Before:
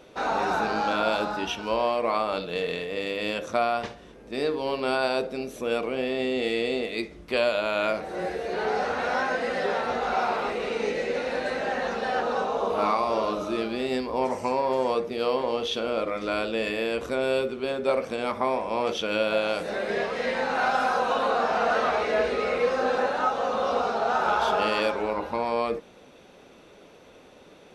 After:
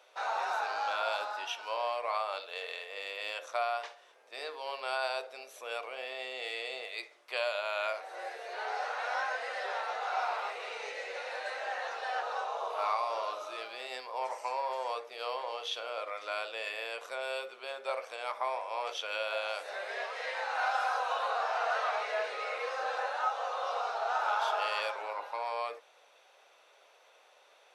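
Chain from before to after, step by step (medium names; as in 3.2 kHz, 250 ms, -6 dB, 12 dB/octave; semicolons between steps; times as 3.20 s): high-pass 630 Hz 24 dB/octave; trim -6 dB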